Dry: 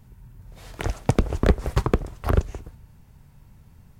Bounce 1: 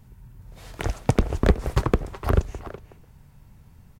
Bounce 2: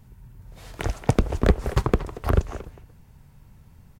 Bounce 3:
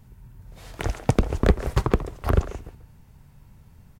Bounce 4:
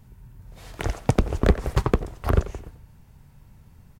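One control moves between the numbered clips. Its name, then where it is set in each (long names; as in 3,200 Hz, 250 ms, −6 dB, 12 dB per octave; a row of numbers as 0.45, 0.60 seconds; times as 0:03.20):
far-end echo of a speakerphone, delay time: 370, 230, 140, 90 milliseconds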